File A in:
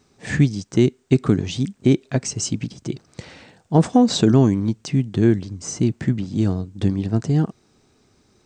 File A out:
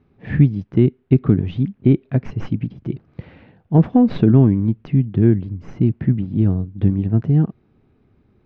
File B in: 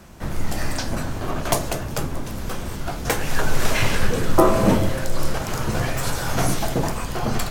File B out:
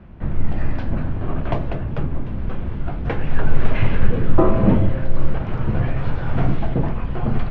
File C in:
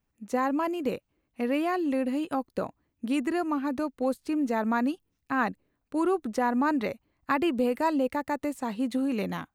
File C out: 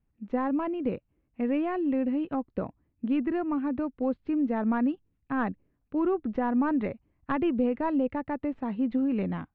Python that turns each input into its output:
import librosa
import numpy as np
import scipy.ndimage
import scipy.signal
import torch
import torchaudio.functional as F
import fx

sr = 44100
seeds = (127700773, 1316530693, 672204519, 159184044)

y = fx.tracing_dist(x, sr, depth_ms=0.056)
y = scipy.signal.sosfilt(scipy.signal.butter(4, 2900.0, 'lowpass', fs=sr, output='sos'), y)
y = fx.low_shelf(y, sr, hz=340.0, db=12.0)
y = F.gain(torch.from_numpy(y), -6.0).numpy()